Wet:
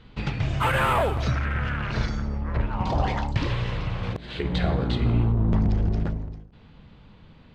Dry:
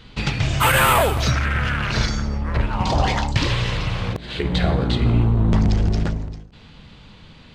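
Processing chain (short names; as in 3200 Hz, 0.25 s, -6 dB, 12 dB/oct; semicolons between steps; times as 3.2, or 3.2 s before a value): LPF 1700 Hz 6 dB/oct, from 4.03 s 4000 Hz, from 5.32 s 1300 Hz; gain -4.5 dB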